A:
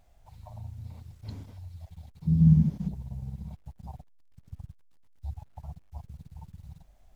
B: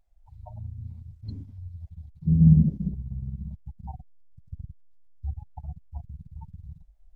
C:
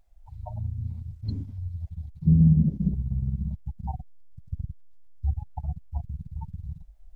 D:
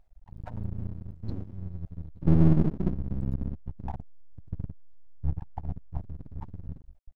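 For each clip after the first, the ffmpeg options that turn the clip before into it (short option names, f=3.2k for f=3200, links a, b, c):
-af "afftdn=nr=23:nf=-39,equalizer=f=140:t=o:w=2.1:g=-4.5,volume=7dB"
-af "alimiter=limit=-16.5dB:level=0:latency=1:release=456,volume=6dB"
-af "highshelf=f=3.5k:g=-11.5,aeval=exprs='max(val(0),0)':c=same,volume=2dB"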